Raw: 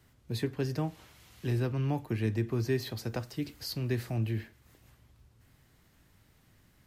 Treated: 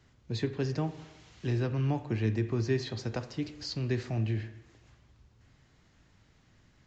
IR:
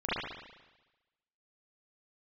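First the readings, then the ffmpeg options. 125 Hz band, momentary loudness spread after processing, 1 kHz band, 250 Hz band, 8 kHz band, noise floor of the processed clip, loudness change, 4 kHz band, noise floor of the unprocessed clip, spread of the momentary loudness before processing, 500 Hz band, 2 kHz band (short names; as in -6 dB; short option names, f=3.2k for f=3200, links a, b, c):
+1.0 dB, 9 LU, +0.5 dB, +0.5 dB, -1.5 dB, -65 dBFS, +1.0 dB, +0.5 dB, -65 dBFS, 7 LU, +1.0 dB, +0.5 dB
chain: -filter_complex "[0:a]asplit=2[a][b];[1:a]atrim=start_sample=2205[c];[b][c]afir=irnorm=-1:irlink=0,volume=-21.5dB[d];[a][d]amix=inputs=2:normalize=0,aresample=16000,aresample=44100"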